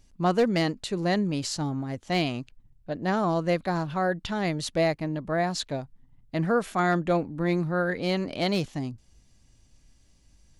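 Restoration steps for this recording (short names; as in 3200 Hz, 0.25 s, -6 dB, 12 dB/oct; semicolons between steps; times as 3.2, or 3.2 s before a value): clip repair -15.5 dBFS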